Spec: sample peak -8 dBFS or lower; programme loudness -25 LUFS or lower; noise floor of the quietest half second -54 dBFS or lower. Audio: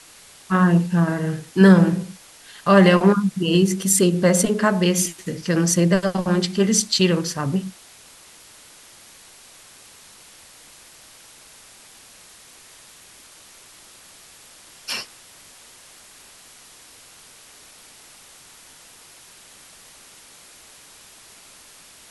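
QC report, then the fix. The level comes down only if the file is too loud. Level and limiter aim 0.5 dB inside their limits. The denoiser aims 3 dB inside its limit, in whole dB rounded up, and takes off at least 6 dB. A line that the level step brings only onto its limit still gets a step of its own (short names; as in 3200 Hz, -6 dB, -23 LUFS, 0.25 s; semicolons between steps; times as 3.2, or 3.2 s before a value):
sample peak -2.0 dBFS: fail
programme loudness -18.5 LUFS: fail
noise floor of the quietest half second -47 dBFS: fail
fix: denoiser 6 dB, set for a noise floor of -47 dBFS; gain -7 dB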